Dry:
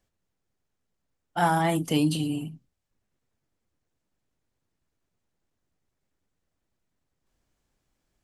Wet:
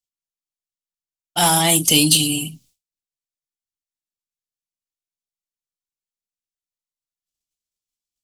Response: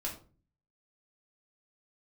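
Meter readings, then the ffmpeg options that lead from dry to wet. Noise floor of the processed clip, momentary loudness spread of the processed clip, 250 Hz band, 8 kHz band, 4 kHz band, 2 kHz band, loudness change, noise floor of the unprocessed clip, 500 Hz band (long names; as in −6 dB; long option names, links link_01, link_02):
below −85 dBFS, 13 LU, +4.5 dB, +24.0 dB, +19.0 dB, +7.5 dB, +11.0 dB, −81 dBFS, +4.5 dB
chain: -af "acontrast=89,agate=range=-33dB:threshold=-49dB:ratio=3:detection=peak,aexciter=amount=3.5:drive=9.9:freq=2500,volume=-2.5dB"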